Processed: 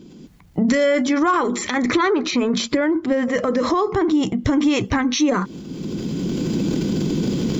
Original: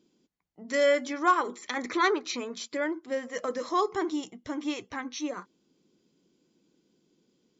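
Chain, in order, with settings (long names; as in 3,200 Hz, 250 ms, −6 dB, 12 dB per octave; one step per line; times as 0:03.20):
camcorder AGC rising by 19 dB per second
bass and treble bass +14 dB, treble −3 dB
downward compressor 2.5 to 1, threshold −40 dBFS, peak gain reduction 15 dB
0:02.03–0:04.45: high-shelf EQ 4,800 Hz −9 dB
transient designer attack 0 dB, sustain +7 dB
boost into a limiter +25 dB
level −7 dB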